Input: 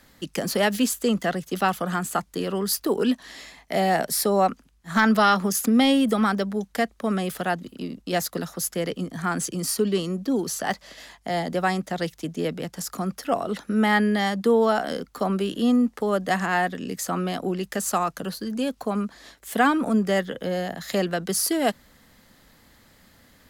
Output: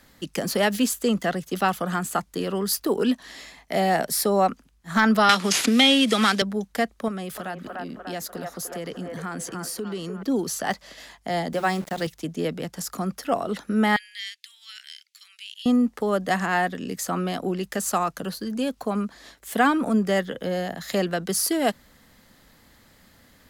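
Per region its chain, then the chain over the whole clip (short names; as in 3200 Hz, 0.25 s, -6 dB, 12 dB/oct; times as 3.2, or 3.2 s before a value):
5.29–6.42 CVSD 64 kbps + weighting filter D + three-band squash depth 70%
7.08–10.23 band-limited delay 0.296 s, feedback 48%, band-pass 930 Hz, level -4 dB + compressor 2.5:1, threshold -31 dBFS
11.53–12.07 HPF 78 Hz 24 dB/oct + notches 60/120/180/240/300/360 Hz + sample gate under -37 dBFS
13.96–15.66 steep high-pass 2200 Hz + high shelf 8200 Hz -12 dB
whole clip: dry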